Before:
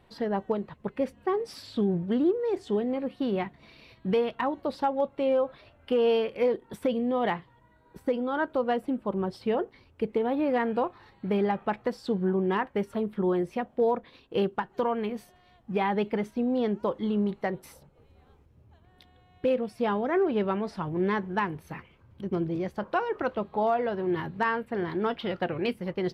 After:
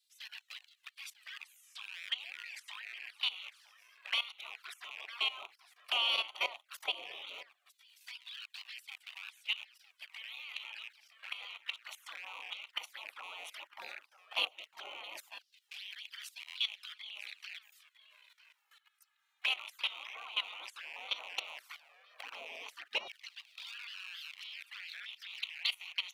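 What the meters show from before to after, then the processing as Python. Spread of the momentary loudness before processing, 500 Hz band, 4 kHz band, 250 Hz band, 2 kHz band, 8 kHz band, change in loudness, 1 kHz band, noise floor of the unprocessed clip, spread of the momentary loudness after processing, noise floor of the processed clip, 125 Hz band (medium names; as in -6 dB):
7 LU, -30.0 dB, +8.5 dB, under -40 dB, -3.0 dB, no reading, -11.0 dB, -18.0 dB, -60 dBFS, 15 LU, -79 dBFS, under -40 dB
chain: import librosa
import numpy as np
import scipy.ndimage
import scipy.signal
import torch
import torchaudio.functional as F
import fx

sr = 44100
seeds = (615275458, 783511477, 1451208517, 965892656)

y = fx.rattle_buzz(x, sr, strikes_db=-44.0, level_db=-40.0)
y = fx.spec_gate(y, sr, threshold_db=-25, keep='weak')
y = y + 10.0 ** (-16.5 / 20.0) * np.pad(y, (int(954 * sr / 1000.0), 0))[:len(y)]
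y = fx.filter_lfo_highpass(y, sr, shape='saw_down', hz=0.13, low_hz=490.0, high_hz=4200.0, q=0.99)
y = fx.low_shelf(y, sr, hz=290.0, db=-10.0)
y = fx.env_flanger(y, sr, rest_ms=2.6, full_db=-46.0)
y = fx.level_steps(y, sr, step_db=16)
y = y * librosa.db_to_amplitude(17.0)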